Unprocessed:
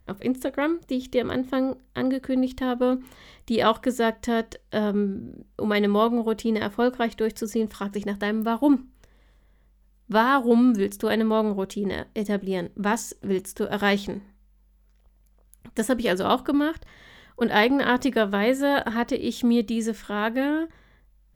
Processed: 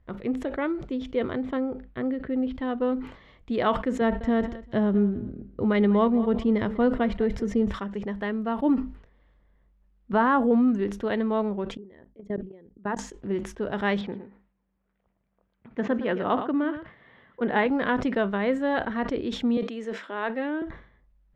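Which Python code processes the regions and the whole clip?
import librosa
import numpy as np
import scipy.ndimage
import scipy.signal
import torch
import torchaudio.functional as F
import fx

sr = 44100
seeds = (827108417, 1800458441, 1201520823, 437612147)

y = fx.chain(x, sr, fx.lowpass(hz=3000.0, slope=12),
    fx.peak_eq(hz=970.0, db=-5.5, octaves=0.49), at=(1.57, 2.55))
y = fx.chain(y, sr, fx.low_shelf(hz=240.0, db=10.5),
    fx.echo_feedback(ms=197, feedback_pct=27, wet_db=-17.5), at=(4.01, 7.72))
y = fx.chain(y, sr, fx.peak_eq(hz=3800.0, db=-7.0, octaves=1.8),
    fx.env_flatten(amount_pct=70), at=(10.13, 10.68))
y = fx.chain(y, sr, fx.envelope_sharpen(power=1.5),
    fx.level_steps(step_db=24), at=(11.77, 12.99))
y = fx.chain(y, sr, fx.bandpass_edges(low_hz=110.0, high_hz=3000.0),
    fx.echo_single(ms=113, db=-12.0),
    fx.resample_bad(factor=3, down='none', up='filtered'), at=(14.01, 17.66))
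y = fx.chain(y, sr, fx.highpass(hz=280.0, slope=24),
    fx.sustainer(db_per_s=110.0), at=(19.57, 20.62))
y = scipy.signal.sosfilt(scipy.signal.butter(2, 2500.0, 'lowpass', fs=sr, output='sos'), y)
y = fx.sustainer(y, sr, db_per_s=110.0)
y = y * 10.0 ** (-3.5 / 20.0)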